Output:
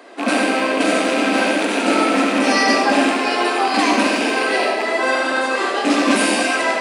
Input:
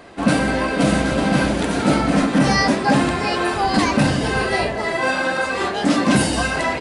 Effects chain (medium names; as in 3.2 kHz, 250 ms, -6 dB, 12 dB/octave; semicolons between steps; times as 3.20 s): rattle on loud lows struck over -26 dBFS, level -14 dBFS; steep high-pass 240 Hz 48 dB/octave; algorithmic reverb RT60 0.88 s, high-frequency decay 0.95×, pre-delay 30 ms, DRR 1 dB